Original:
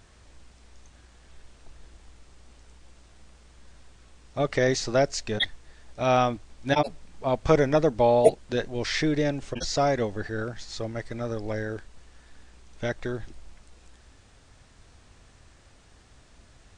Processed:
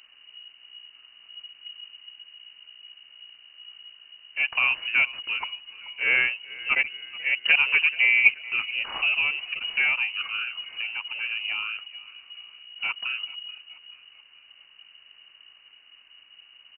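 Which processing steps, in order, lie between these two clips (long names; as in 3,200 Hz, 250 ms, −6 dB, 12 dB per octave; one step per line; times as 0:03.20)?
running median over 15 samples
voice inversion scrambler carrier 2,900 Hz
echo with shifted repeats 431 ms, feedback 49%, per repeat −36 Hz, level −20 dB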